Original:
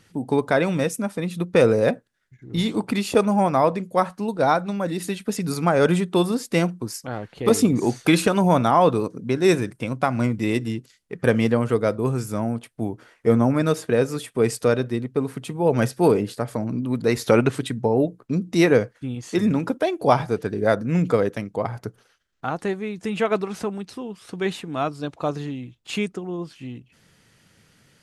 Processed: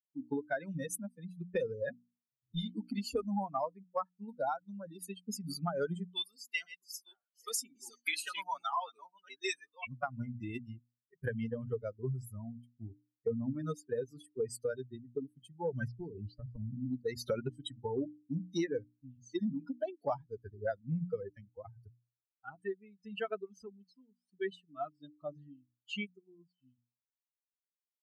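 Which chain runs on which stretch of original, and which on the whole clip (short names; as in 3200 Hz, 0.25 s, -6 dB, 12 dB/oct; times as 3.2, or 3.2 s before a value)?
6.11–9.87 reverse delay 0.534 s, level -6.5 dB + dynamic EQ 2500 Hz, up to +4 dB, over -33 dBFS, Q 0.97 + HPF 1100 Hz 6 dB/oct
15.88–16.91 LPF 5500 Hz 24 dB/oct + low shelf 390 Hz +8.5 dB + compressor 10:1, threshold -19 dBFS
whole clip: per-bin expansion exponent 3; compressor 6:1, threshold -33 dBFS; notches 60/120/180/240/300 Hz; gain +1 dB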